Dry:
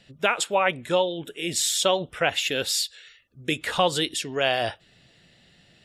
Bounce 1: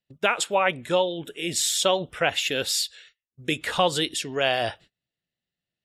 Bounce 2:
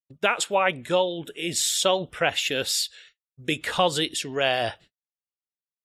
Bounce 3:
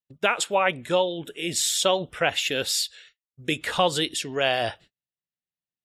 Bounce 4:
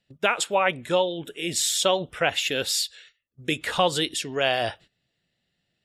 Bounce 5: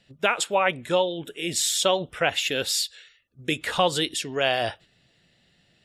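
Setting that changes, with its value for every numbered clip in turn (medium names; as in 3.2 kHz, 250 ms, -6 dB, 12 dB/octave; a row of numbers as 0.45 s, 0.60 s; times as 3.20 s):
gate, range: -32 dB, -57 dB, -45 dB, -19 dB, -6 dB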